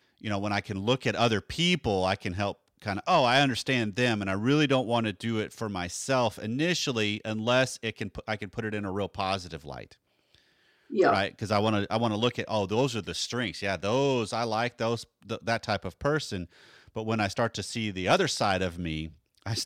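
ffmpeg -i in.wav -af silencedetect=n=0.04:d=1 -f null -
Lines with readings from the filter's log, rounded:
silence_start: 9.82
silence_end: 10.93 | silence_duration: 1.11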